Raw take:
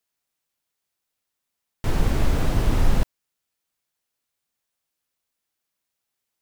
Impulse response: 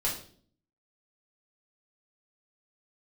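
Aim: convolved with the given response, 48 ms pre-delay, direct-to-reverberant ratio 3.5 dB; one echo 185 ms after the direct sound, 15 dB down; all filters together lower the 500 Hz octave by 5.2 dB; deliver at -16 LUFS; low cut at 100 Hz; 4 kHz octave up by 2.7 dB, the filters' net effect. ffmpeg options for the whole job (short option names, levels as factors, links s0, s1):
-filter_complex "[0:a]highpass=100,equalizer=f=500:t=o:g=-7,equalizer=f=4000:t=o:g=3.5,aecho=1:1:185:0.178,asplit=2[s0][s1];[1:a]atrim=start_sample=2205,adelay=48[s2];[s1][s2]afir=irnorm=-1:irlink=0,volume=0.316[s3];[s0][s3]amix=inputs=2:normalize=0,volume=3.76"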